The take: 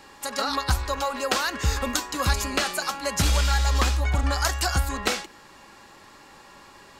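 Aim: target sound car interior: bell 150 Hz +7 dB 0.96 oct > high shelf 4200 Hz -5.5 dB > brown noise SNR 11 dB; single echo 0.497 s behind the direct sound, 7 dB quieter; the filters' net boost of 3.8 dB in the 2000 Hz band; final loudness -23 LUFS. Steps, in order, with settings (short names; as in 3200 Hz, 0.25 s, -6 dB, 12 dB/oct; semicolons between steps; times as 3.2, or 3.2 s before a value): bell 150 Hz +7 dB 0.96 oct; bell 2000 Hz +6 dB; high shelf 4200 Hz -5.5 dB; echo 0.497 s -7 dB; brown noise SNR 11 dB; gain +0.5 dB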